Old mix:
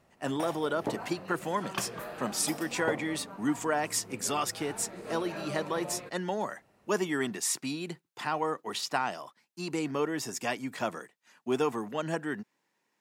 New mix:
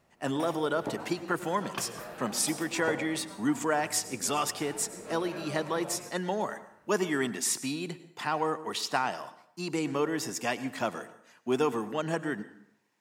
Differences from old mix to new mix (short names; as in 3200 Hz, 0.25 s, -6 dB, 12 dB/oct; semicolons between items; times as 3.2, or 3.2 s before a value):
background -4.5 dB; reverb: on, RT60 0.75 s